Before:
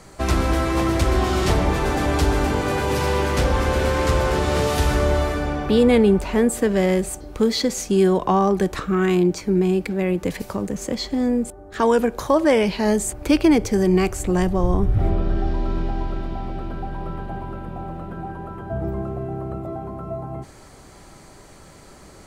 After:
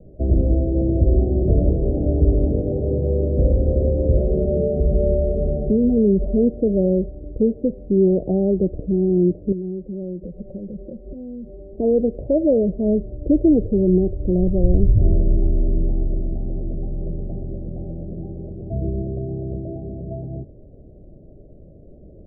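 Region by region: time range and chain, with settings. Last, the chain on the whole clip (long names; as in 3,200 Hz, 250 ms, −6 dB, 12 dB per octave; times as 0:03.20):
0:04.17–0:06.38: comb filter 5 ms, depth 92% + downward compressor 2.5 to 1, threshold −16 dBFS
0:09.52–0:11.78: downward compressor 5 to 1, threshold −32 dBFS + comb filter 5.4 ms, depth 66%
whole clip: Butterworth low-pass 640 Hz 72 dB per octave; low-shelf EQ 120 Hz +6 dB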